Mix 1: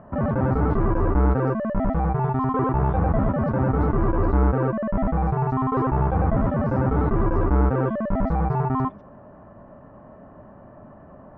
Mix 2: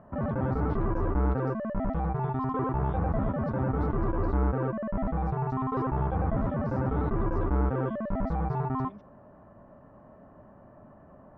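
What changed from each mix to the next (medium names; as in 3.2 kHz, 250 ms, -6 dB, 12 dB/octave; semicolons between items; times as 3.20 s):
background -7.0 dB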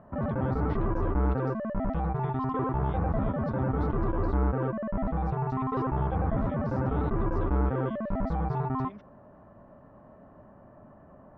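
speech: add peaking EQ 1.4 kHz +15 dB 2 oct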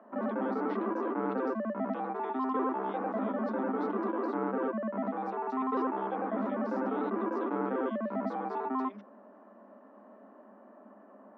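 master: add Chebyshev high-pass 200 Hz, order 10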